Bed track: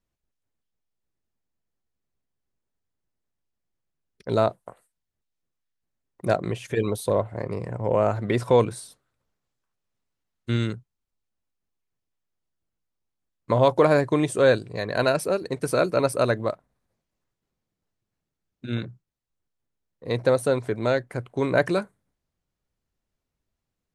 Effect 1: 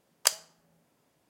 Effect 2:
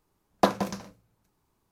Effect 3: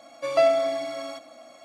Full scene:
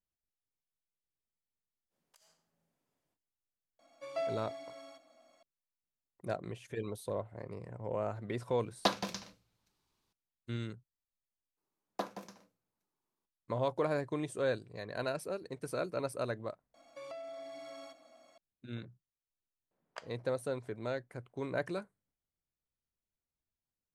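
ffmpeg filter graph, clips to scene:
-filter_complex "[1:a]asplit=2[a][b];[3:a]asplit=2[c][d];[2:a]asplit=2[e][f];[0:a]volume=-14.5dB[g];[a]acompressor=threshold=-47dB:ratio=5:attack=0.52:release=40:knee=1:detection=rms[h];[e]equalizer=f=3.9k:t=o:w=2:g=13[i];[f]highpass=210[j];[d]acompressor=threshold=-30dB:ratio=6:attack=3.2:release=140:knee=1:detection=peak[k];[b]lowpass=1.8k[l];[h]atrim=end=1.29,asetpts=PTS-STARTPTS,volume=-15dB,afade=t=in:d=0.05,afade=t=out:st=1.24:d=0.05,adelay=1890[m];[c]atrim=end=1.64,asetpts=PTS-STARTPTS,volume=-17dB,afade=t=in:d=0.004:c=hsin,afade=t=out:st=1.636:d=0.004:c=hsin,adelay=3790[n];[i]atrim=end=1.71,asetpts=PTS-STARTPTS,volume=-10.5dB,afade=t=in:d=0.004:c=hsin,afade=t=out:st=1.706:d=0.004:c=hsin,adelay=371322S[o];[j]atrim=end=1.71,asetpts=PTS-STARTPTS,volume=-15.5dB,afade=t=in:d=0.02,afade=t=out:st=1.69:d=0.02,adelay=11560[p];[k]atrim=end=1.64,asetpts=PTS-STARTPTS,volume=-13.5dB,afade=t=in:d=0.004:c=hsin,afade=t=out:st=1.636:d=0.004:c=hsin,adelay=16740[q];[l]atrim=end=1.29,asetpts=PTS-STARTPTS,volume=-11.5dB,afade=t=in:d=0.004:c=hsin,afade=t=out:st=1.286:d=0.004:c=hsin,adelay=19710[r];[g][m][n][o][p][q][r]amix=inputs=7:normalize=0"

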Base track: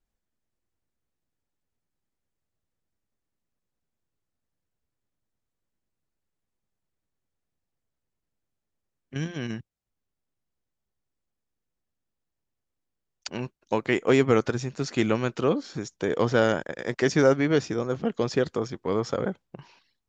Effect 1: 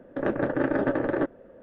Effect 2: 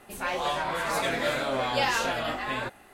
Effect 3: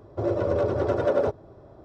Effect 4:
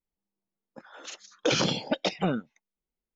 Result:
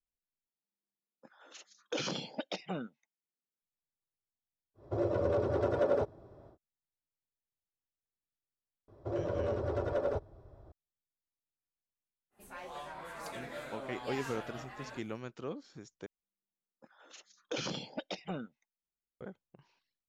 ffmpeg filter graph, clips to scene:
-filter_complex "[4:a]asplit=2[a][b];[3:a]asplit=2[c][d];[0:a]volume=-17dB[e];[a]highpass=130[f];[d]asubboost=boost=8.5:cutoff=88[g];[2:a]equalizer=f=3.5k:t=o:w=1.4:g=-4.5[h];[e]asplit=3[i][j][k];[i]atrim=end=0.474[l];[f]atrim=end=3.15,asetpts=PTS-STARTPTS,volume=-11dB[m];[j]atrim=start=3.616:end=16.064[n];[b]atrim=end=3.15,asetpts=PTS-STARTPTS,volume=-12.5dB[o];[k]atrim=start=19.206[p];[c]atrim=end=1.84,asetpts=PTS-STARTPTS,volume=-6.5dB,afade=t=in:d=0.1,afade=t=out:st=1.74:d=0.1,adelay=4740[q];[g]atrim=end=1.84,asetpts=PTS-STARTPTS,volume=-9.5dB,afade=t=in:d=0.004:c=hsin,afade=t=out:st=1.836:d=0.004:c=hsin,adelay=8880[r];[h]atrim=end=2.93,asetpts=PTS-STARTPTS,volume=-15.5dB,afade=t=in:d=0.1,afade=t=out:st=2.83:d=0.1,adelay=12300[s];[l][m]acrossfade=d=0.004:c1=hsin:c2=hsin[t];[t][n]acrossfade=d=0.004:c1=hsin:c2=hsin[u];[u][o]acrossfade=d=0.004:c1=hsin:c2=hsin[v];[v][p]acrossfade=d=0.004:c1=hsin:c2=hsin[w];[w][q][r][s]amix=inputs=4:normalize=0"

